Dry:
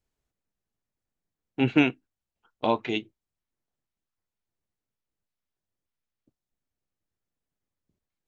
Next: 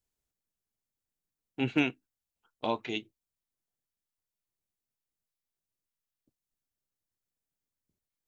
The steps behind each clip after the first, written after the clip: treble shelf 4.8 kHz +10.5 dB; trim -7 dB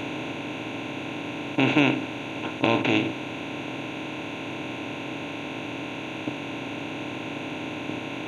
spectral levelling over time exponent 0.2; trim +3.5 dB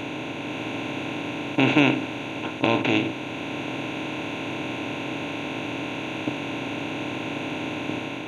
level rider gain up to 3 dB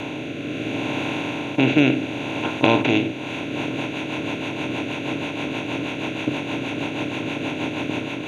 rotary cabinet horn 0.7 Hz, later 6.3 Hz, at 2.96 s; trim +5.5 dB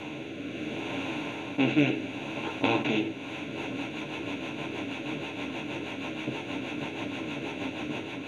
three-phase chorus; trim -5 dB

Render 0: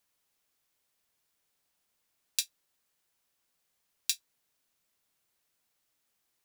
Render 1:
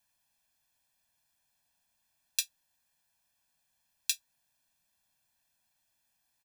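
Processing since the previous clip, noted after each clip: comb 1.2 ms, depth 86%; trim -2 dB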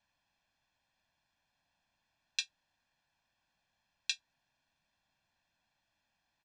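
Gaussian low-pass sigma 1.8 samples; trim +3.5 dB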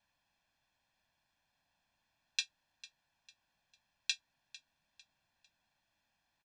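feedback delay 450 ms, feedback 37%, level -18.5 dB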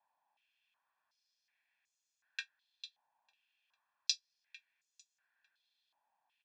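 step-sequenced band-pass 2.7 Hz 880–6800 Hz; trim +8 dB

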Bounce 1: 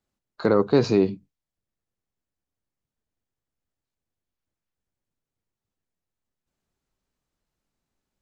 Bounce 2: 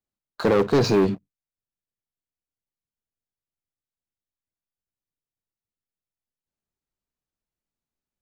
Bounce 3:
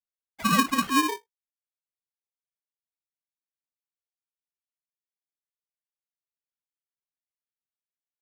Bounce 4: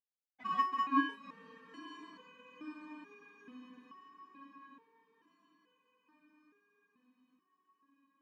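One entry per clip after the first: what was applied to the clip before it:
waveshaping leveller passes 3; trim -5 dB
formants replaced by sine waves; flange 0.51 Hz, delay 7.1 ms, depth 7.9 ms, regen -47%; polarity switched at an audio rate 680 Hz
band-pass 120–2100 Hz; echo that smears into a reverb 924 ms, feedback 56%, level -7 dB; resonator arpeggio 2.3 Hz 250–500 Hz; trim +3 dB

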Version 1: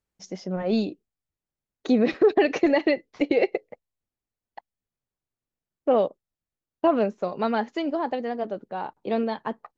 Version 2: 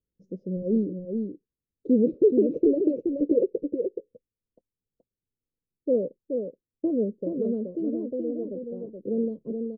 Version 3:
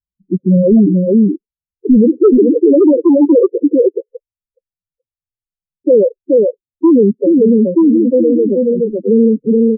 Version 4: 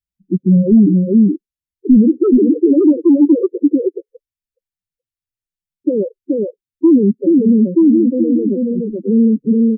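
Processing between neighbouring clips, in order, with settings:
elliptic low-pass 510 Hz, stop band 40 dB; delay 425 ms -5.5 dB
waveshaping leveller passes 5; loudest bins only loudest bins 4; trim +7 dB
high-order bell 730 Hz -11.5 dB

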